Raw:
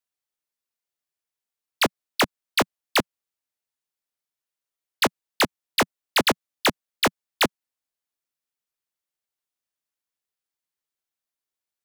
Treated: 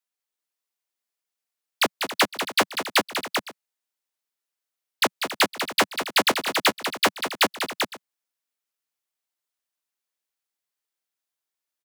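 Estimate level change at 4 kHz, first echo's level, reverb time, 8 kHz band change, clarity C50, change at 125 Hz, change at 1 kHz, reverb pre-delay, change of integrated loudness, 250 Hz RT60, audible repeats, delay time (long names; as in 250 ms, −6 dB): +2.0 dB, −8.0 dB, no reverb audible, +2.0 dB, no reverb audible, −6.0 dB, +1.5 dB, no reverb audible, +0.5 dB, no reverb audible, 4, 194 ms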